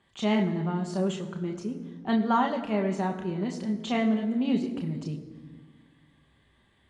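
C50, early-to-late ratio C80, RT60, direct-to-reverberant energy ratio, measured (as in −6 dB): 10.0 dB, 11.0 dB, 1.8 s, 1.5 dB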